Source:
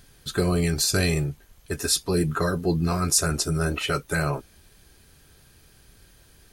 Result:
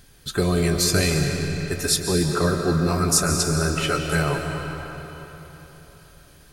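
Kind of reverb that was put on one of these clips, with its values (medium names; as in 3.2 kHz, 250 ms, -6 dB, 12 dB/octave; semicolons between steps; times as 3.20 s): algorithmic reverb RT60 3.8 s, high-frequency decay 0.8×, pre-delay 105 ms, DRR 3 dB; trim +1.5 dB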